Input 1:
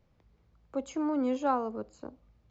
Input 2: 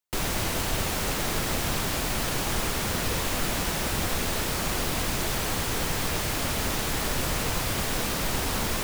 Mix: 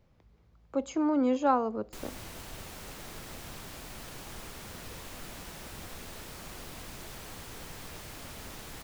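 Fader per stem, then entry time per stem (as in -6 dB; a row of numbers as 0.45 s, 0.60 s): +3.0 dB, -16.5 dB; 0.00 s, 1.80 s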